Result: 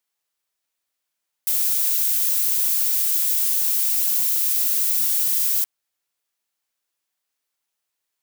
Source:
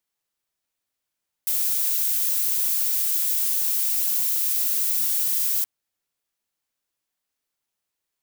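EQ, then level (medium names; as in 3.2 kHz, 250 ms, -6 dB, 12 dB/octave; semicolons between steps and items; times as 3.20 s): bass shelf 340 Hz -9.5 dB; +2.5 dB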